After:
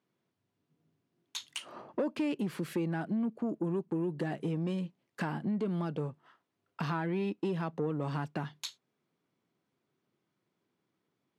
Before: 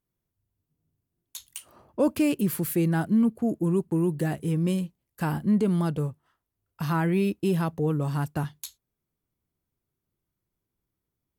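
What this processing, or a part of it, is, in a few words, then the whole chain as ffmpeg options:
AM radio: -af "highpass=130,lowpass=4100,acompressor=threshold=-36dB:ratio=6,asoftclip=type=tanh:threshold=-31.5dB,highpass=130,lowshelf=frequency=110:gain=-7,volume=8.5dB"

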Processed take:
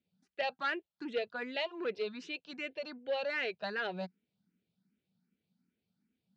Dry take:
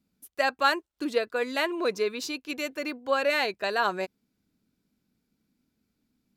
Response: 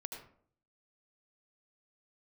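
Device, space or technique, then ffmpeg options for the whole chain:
barber-pole phaser into a guitar amplifier: -filter_complex "[0:a]asplit=2[link_01][link_02];[link_02]afreqshift=2.6[link_03];[link_01][link_03]amix=inputs=2:normalize=1,asoftclip=type=tanh:threshold=-23dB,highpass=110,equalizer=frequency=180:width_type=q:width=4:gain=9,equalizer=frequency=290:width_type=q:width=4:gain=-7,equalizer=frequency=1100:width_type=q:width=4:gain=-8,equalizer=frequency=3000:width_type=q:width=4:gain=3,lowpass=frequency=4400:width=0.5412,lowpass=frequency=4400:width=1.3066,volume=-3.5dB"

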